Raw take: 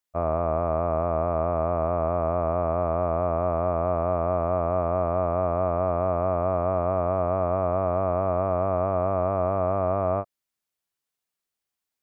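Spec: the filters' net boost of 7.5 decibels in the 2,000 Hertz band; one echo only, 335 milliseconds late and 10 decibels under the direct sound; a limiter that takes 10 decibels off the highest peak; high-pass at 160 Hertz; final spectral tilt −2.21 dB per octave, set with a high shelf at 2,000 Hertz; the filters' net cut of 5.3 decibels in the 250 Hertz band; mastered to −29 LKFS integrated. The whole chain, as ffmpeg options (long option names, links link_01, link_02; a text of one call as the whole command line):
ffmpeg -i in.wav -af "highpass=160,equalizer=frequency=250:width_type=o:gain=-6.5,highshelf=frequency=2000:gain=6,equalizer=frequency=2000:width_type=o:gain=7,alimiter=limit=-23dB:level=0:latency=1,aecho=1:1:335:0.316,volume=4.5dB" out.wav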